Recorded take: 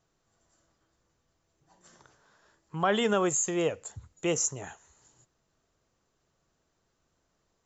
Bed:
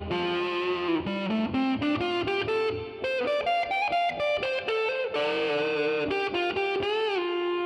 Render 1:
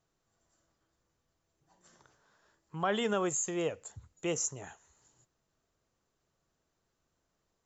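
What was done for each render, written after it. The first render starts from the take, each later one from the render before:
level −5 dB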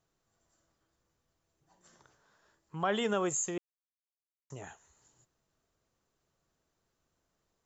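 0:03.58–0:04.50: silence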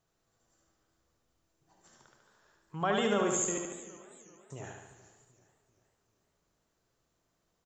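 repeating echo 73 ms, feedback 58%, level −4 dB
feedback echo with a swinging delay time 390 ms, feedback 46%, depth 90 cents, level −19 dB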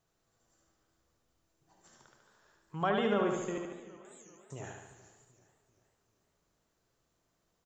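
0:02.89–0:04.05: high-frequency loss of the air 230 metres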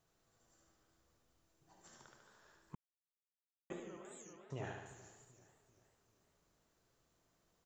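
0:02.75–0:03.70: silence
0:04.33–0:04.86: low-pass filter 5,000 Hz 24 dB per octave

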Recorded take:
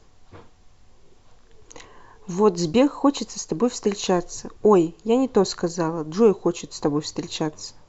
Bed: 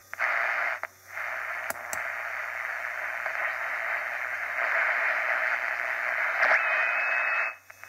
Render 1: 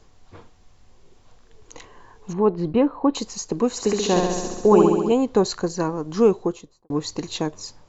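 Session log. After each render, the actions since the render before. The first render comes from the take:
0:02.33–0:03.15: high-frequency loss of the air 500 metres
0:03.70–0:05.12: flutter between parallel walls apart 11.5 metres, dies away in 1.3 s
0:06.30–0:06.90: fade out and dull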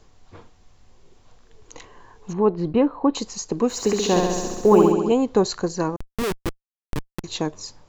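0:03.69–0:04.92: mu-law and A-law mismatch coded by mu
0:05.96–0:07.24: comparator with hysteresis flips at −17.5 dBFS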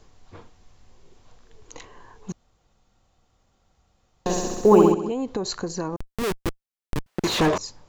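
0:02.32–0:04.26: fill with room tone
0:04.94–0:06.42: downward compressor, threshold −23 dBFS
0:07.06–0:07.58: mid-hump overdrive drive 41 dB, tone 1,600 Hz, clips at −11.5 dBFS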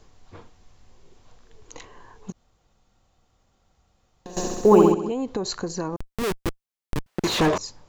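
0:02.30–0:04.37: downward compressor, threshold −37 dBFS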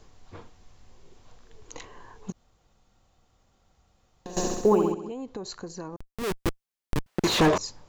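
0:04.53–0:06.41: duck −9 dB, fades 0.25 s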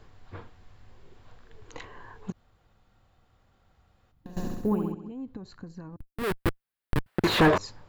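0:04.12–0:06.18: gain on a spectral selection 320–9,400 Hz −11 dB
graphic EQ with 15 bands 100 Hz +5 dB, 1,600 Hz +5 dB, 6,300 Hz −11 dB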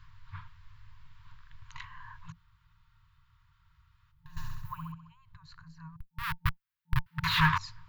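parametric band 8,300 Hz −10.5 dB 0.85 octaves
brick-wall band-stop 170–900 Hz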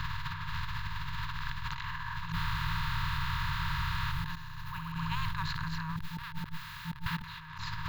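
compressor on every frequency bin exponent 0.4
compressor whose output falls as the input rises −36 dBFS, ratio −1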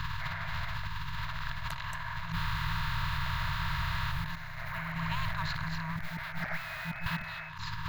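mix in bed −16 dB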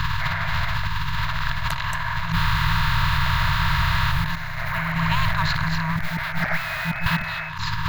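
level +12 dB

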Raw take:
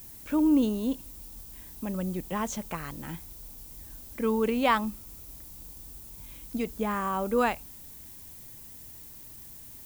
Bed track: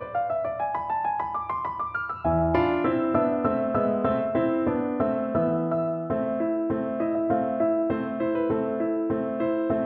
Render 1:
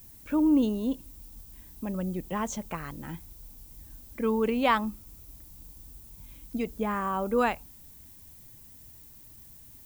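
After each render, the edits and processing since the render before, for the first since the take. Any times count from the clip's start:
broadband denoise 6 dB, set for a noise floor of −47 dBFS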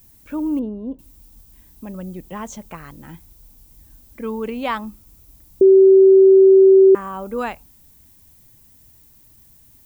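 0:00.59–0:00.99: low-pass filter 1,000 Hz
0:05.61–0:06.95: beep over 384 Hz −6 dBFS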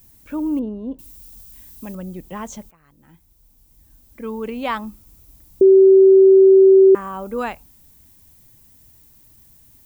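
0:00.67–0:01.95: high-shelf EQ 2,100 Hz +8 dB
0:02.71–0:04.77: fade in, from −23.5 dB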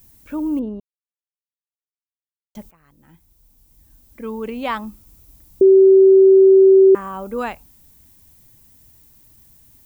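0:00.80–0:02.55: silence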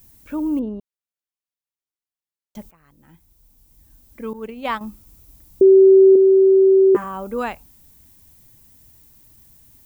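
0:04.33–0:04.81: downward expander −23 dBFS
0:06.14–0:07.04: double-tracking delay 14 ms −3 dB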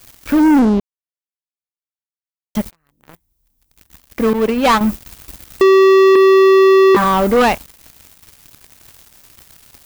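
downward compressor, threshold −13 dBFS, peak gain reduction 5 dB
leveller curve on the samples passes 5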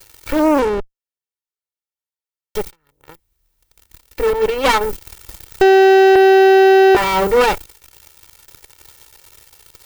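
lower of the sound and its delayed copy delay 2.2 ms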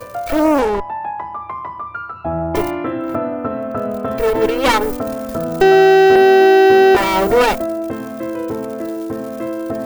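mix in bed track +2 dB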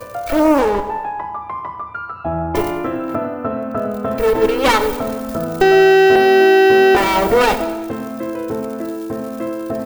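repeating echo 96 ms, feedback 58%, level −16.5 dB
coupled-rooms reverb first 1 s, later 2.7 s, from −18 dB, DRR 10.5 dB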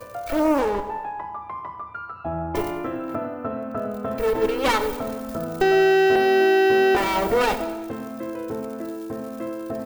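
level −7 dB

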